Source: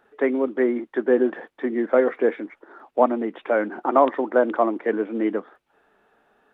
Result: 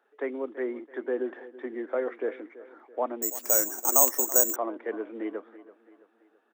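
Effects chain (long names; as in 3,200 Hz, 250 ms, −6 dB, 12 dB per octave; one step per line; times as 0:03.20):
high-pass filter 280 Hz 24 dB per octave
in parallel at −3 dB: brickwall limiter −12.5 dBFS, peak gain reduction 7.5 dB
on the sum: repeating echo 332 ms, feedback 45%, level −17 dB
0:03.22–0:04.56: bad sample-rate conversion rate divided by 6×, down filtered, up zero stuff
level −14 dB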